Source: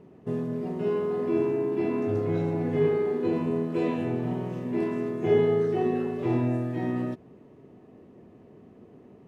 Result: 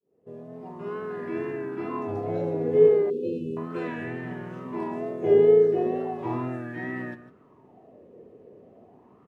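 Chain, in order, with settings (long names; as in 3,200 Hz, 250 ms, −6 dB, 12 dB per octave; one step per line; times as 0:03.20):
fade in at the beginning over 1.20 s
single-tap delay 151 ms −13 dB
pitch vibrato 2.2 Hz 46 cents
0:03.10–0:03.57: linear-phase brick-wall band-stop 560–2,500 Hz
auto-filter bell 0.36 Hz 460–1,800 Hz +16 dB
level −6 dB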